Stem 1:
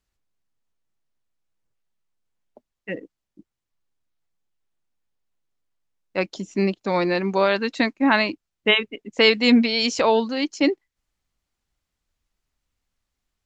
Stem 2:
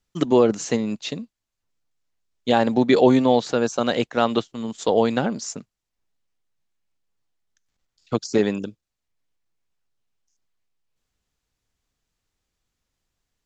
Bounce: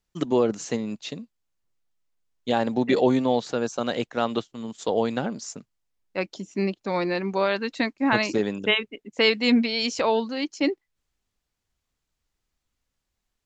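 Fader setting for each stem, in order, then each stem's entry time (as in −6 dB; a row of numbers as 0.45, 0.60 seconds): −4.0, −5.0 decibels; 0.00, 0.00 seconds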